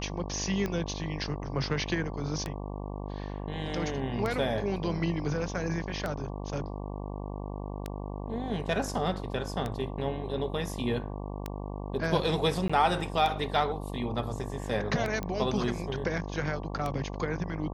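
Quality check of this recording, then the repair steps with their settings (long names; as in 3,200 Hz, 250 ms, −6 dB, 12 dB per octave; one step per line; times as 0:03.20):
mains buzz 50 Hz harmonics 23 −37 dBFS
scratch tick 33 1/3 rpm −18 dBFS
0:12.68–0:12.70: drop-out 15 ms
0:15.23: click −20 dBFS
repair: click removal
hum removal 50 Hz, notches 23
repair the gap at 0:12.68, 15 ms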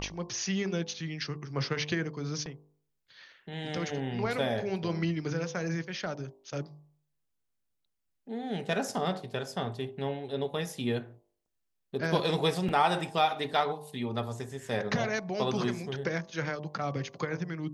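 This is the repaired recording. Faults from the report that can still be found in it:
0:15.23: click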